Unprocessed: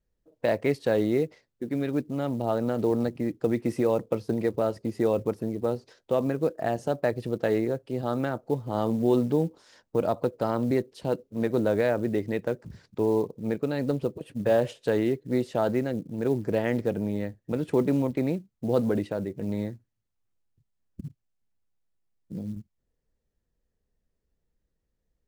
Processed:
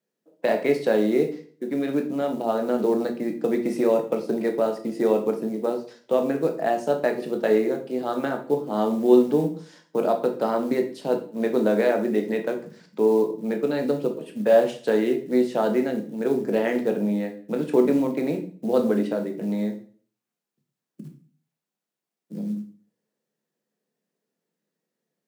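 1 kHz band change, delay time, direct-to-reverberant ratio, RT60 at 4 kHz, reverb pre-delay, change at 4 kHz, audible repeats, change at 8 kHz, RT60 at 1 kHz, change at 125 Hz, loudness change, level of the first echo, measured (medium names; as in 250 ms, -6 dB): +4.5 dB, no echo, 4.0 dB, 0.40 s, 13 ms, +4.0 dB, no echo, no reading, 0.45 s, -5.0 dB, +4.0 dB, no echo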